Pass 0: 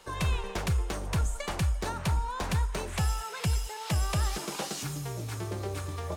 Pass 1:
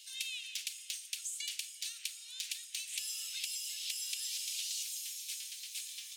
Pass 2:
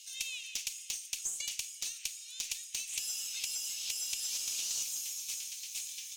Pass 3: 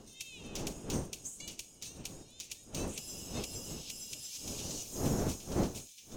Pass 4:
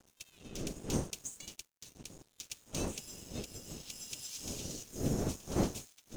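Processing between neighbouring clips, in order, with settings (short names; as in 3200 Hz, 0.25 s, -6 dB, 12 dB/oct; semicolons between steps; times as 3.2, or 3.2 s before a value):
steep high-pass 2700 Hz 36 dB/oct; compressor, threshold -41 dBFS, peak gain reduction 7.5 dB; gain +5.5 dB
fifteen-band EQ 2500 Hz +6 dB, 6300 Hz +11 dB, 16000 Hz +10 dB; added harmonics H 6 -30 dB, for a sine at -11 dBFS; gain -5.5 dB
wind noise 350 Hz -36 dBFS; upward expander 1.5:1, over -44 dBFS; gain -2.5 dB
rotary speaker horn 0.65 Hz; crossover distortion -54.5 dBFS; gain +3 dB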